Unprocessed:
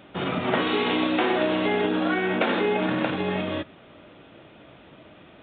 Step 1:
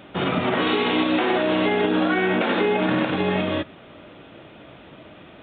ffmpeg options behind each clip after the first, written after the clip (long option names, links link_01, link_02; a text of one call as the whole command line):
ffmpeg -i in.wav -af "alimiter=limit=-16dB:level=0:latency=1:release=86,volume=4.5dB" out.wav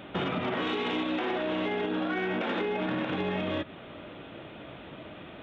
ffmpeg -i in.wav -af "acompressor=threshold=-26dB:ratio=10,asoftclip=type=tanh:threshold=-20dB" out.wav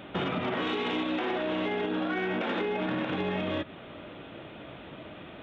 ffmpeg -i in.wav -af anull out.wav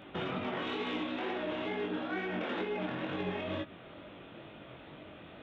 ffmpeg -i in.wav -af "flanger=delay=19.5:depth=5.1:speed=2.2,volume=-2.5dB" out.wav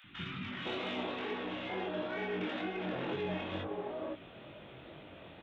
ffmpeg -i in.wav -filter_complex "[0:a]acrossover=split=260|1300[link_01][link_02][link_03];[link_01]adelay=40[link_04];[link_02]adelay=510[link_05];[link_04][link_05][link_03]amix=inputs=3:normalize=0" out.wav